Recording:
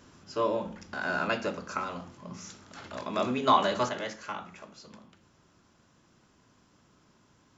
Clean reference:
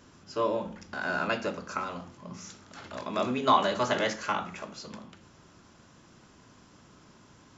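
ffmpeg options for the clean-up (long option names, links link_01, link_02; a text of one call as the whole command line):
ffmpeg -i in.wav -af "asetnsamples=nb_out_samples=441:pad=0,asendcmd='3.89 volume volume 7.5dB',volume=0dB" out.wav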